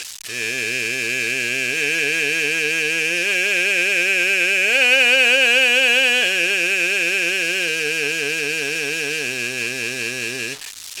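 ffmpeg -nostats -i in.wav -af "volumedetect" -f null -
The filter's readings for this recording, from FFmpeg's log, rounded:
mean_volume: -19.4 dB
max_volume: -3.3 dB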